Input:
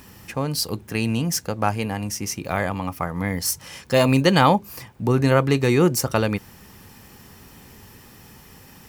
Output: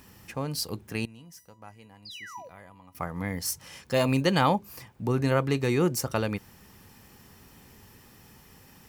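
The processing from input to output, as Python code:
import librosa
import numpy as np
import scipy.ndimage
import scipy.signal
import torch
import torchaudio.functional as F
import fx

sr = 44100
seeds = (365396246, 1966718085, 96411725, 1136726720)

y = fx.spec_paint(x, sr, seeds[0], shape='fall', start_s=2.05, length_s=0.44, low_hz=470.0, high_hz=5100.0, level_db=-19.0)
y = fx.comb_fb(y, sr, f0_hz=990.0, decay_s=0.33, harmonics='all', damping=0.0, mix_pct=90, at=(1.05, 2.95))
y = F.gain(torch.from_numpy(y), -7.0).numpy()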